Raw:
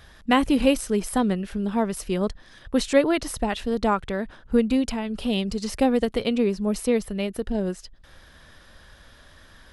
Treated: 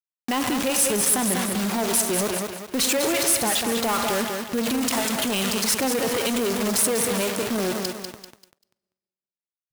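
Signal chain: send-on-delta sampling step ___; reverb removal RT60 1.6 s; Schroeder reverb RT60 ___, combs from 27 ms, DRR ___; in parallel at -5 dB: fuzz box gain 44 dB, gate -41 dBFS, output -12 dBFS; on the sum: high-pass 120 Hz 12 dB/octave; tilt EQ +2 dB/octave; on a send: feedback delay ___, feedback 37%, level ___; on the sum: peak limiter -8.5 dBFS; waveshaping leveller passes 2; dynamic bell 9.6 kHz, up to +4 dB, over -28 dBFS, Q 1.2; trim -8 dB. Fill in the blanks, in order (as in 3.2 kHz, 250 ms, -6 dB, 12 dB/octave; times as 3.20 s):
-30.5 dBFS, 1.1 s, 15.5 dB, 195 ms, -9 dB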